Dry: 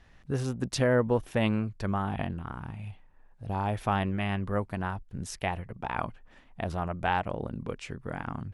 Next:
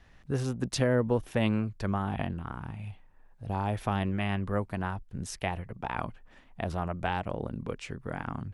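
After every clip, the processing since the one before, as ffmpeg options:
-filter_complex "[0:a]acrossover=split=460|3000[a][b][c];[b]acompressor=threshold=-29dB:ratio=6[d];[a][d][c]amix=inputs=3:normalize=0"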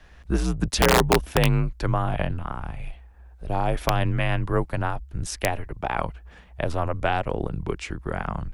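-af "afreqshift=-77,aeval=exprs='(mod(6.31*val(0)+1,2)-1)/6.31':c=same,volume=7.5dB"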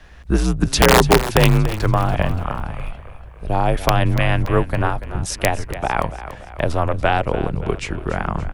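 -filter_complex "[0:a]asplit=6[a][b][c][d][e][f];[b]adelay=286,afreqshift=-35,volume=-13dB[g];[c]adelay=572,afreqshift=-70,volume=-19dB[h];[d]adelay=858,afreqshift=-105,volume=-25dB[i];[e]adelay=1144,afreqshift=-140,volume=-31.1dB[j];[f]adelay=1430,afreqshift=-175,volume=-37.1dB[k];[a][g][h][i][j][k]amix=inputs=6:normalize=0,volume=6dB"

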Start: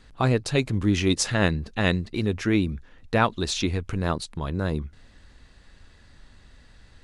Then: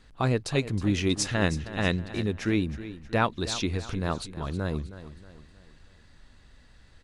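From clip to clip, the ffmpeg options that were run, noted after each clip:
-af "aecho=1:1:317|634|951|1268:0.2|0.0858|0.0369|0.0159,volume=-3.5dB"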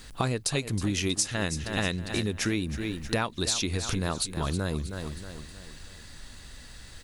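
-af "aemphasis=mode=production:type=75fm,acompressor=threshold=-34dB:ratio=6,volume=8.5dB"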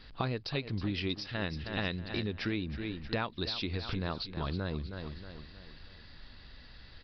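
-af "aresample=11025,aresample=44100,volume=-5.5dB"

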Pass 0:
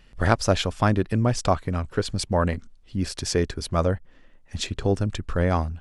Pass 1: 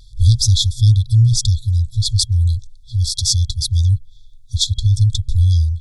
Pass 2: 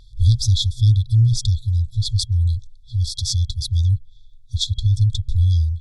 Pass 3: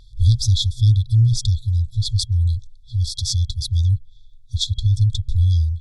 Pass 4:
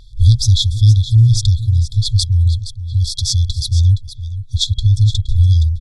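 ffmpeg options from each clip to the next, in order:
-af "afftfilt=real='re*(1-between(b*sr/4096,120,3300))':imag='im*(1-between(b*sr/4096,120,3300))':win_size=4096:overlap=0.75,equalizer=f=650:t=o:w=2.9:g=14,acontrast=49,volume=5.5dB"
-af "bass=f=250:g=-3,treble=f=4k:g=-10"
-af anull
-af "aecho=1:1:469:0.237,volume=5dB"

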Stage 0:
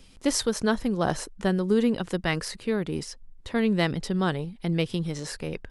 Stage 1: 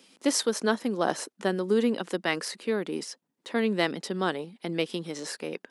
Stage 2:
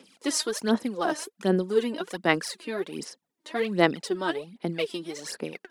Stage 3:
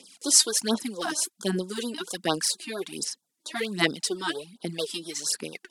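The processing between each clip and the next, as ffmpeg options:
-af "highpass=f=230:w=0.5412,highpass=f=230:w=1.3066"
-af "aphaser=in_gain=1:out_gain=1:delay=3.3:decay=0.72:speed=1.3:type=sinusoidal,volume=-3dB"
-af "equalizer=f=8.8k:t=o:w=2.6:g=15,afftfilt=real='re*(1-between(b*sr/1024,450*pow(2400/450,0.5+0.5*sin(2*PI*4.4*pts/sr))/1.41,450*pow(2400/450,0.5+0.5*sin(2*PI*4.4*pts/sr))*1.41))':imag='im*(1-between(b*sr/1024,450*pow(2400/450,0.5+0.5*sin(2*PI*4.4*pts/sr))/1.41,450*pow(2400/450,0.5+0.5*sin(2*PI*4.4*pts/sr))*1.41))':win_size=1024:overlap=0.75,volume=-3dB"

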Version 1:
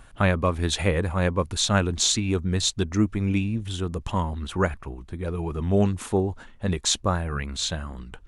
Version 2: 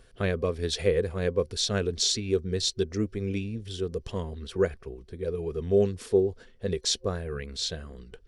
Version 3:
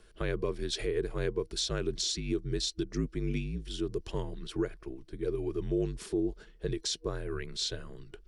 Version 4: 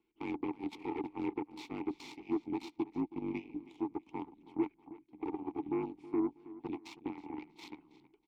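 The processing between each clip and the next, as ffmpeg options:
-af "superequalizer=7b=3.55:9b=0.398:10b=0.562:13b=1.41:14b=2.51,volume=-7.5dB"
-af "alimiter=limit=-20.5dB:level=0:latency=1:release=167,afreqshift=-50,volume=-1.5dB"
-filter_complex "[0:a]aeval=exprs='0.112*(cos(1*acos(clip(val(0)/0.112,-1,1)))-cos(1*PI/2))+0.0126*(cos(4*acos(clip(val(0)/0.112,-1,1)))-cos(4*PI/2))+0.0224*(cos(7*acos(clip(val(0)/0.112,-1,1)))-cos(7*PI/2))':c=same,asplit=3[a][b][c];[a]bandpass=f=300:t=q:w=8,volume=0dB[d];[b]bandpass=f=870:t=q:w=8,volume=-6dB[e];[c]bandpass=f=2.24k:t=q:w=8,volume=-9dB[f];[d][e][f]amix=inputs=3:normalize=0,asplit=2[g][h];[h]adelay=321,lowpass=f=4.5k:p=1,volume=-17dB,asplit=2[i][j];[j]adelay=321,lowpass=f=4.5k:p=1,volume=0.33,asplit=2[k][l];[l]adelay=321,lowpass=f=4.5k:p=1,volume=0.33[m];[g][i][k][m]amix=inputs=4:normalize=0,volume=6.5dB"

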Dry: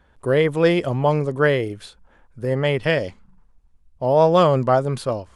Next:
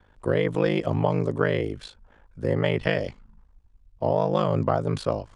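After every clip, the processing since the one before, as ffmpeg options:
-filter_complex "[0:a]lowpass=7.1k,acrossover=split=150[a][b];[b]acompressor=threshold=-18dB:ratio=10[c];[a][c]amix=inputs=2:normalize=0,aeval=exprs='val(0)*sin(2*PI*26*n/s)':c=same,volume=1.5dB"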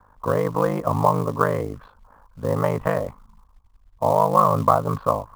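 -af "lowpass=f=1.1k:t=q:w=5.5,equalizer=f=360:w=5.8:g=-11,acrusher=bits=6:mode=log:mix=0:aa=0.000001,volume=1dB"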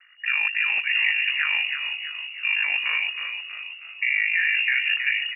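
-filter_complex "[0:a]alimiter=limit=-13dB:level=0:latency=1:release=35,asplit=8[a][b][c][d][e][f][g][h];[b]adelay=319,afreqshift=-80,volume=-6.5dB[i];[c]adelay=638,afreqshift=-160,volume=-11.7dB[j];[d]adelay=957,afreqshift=-240,volume=-16.9dB[k];[e]adelay=1276,afreqshift=-320,volume=-22.1dB[l];[f]adelay=1595,afreqshift=-400,volume=-27.3dB[m];[g]adelay=1914,afreqshift=-480,volume=-32.5dB[n];[h]adelay=2233,afreqshift=-560,volume=-37.7dB[o];[a][i][j][k][l][m][n][o]amix=inputs=8:normalize=0,lowpass=f=2.5k:t=q:w=0.5098,lowpass=f=2.5k:t=q:w=0.6013,lowpass=f=2.5k:t=q:w=0.9,lowpass=f=2.5k:t=q:w=2.563,afreqshift=-2900"

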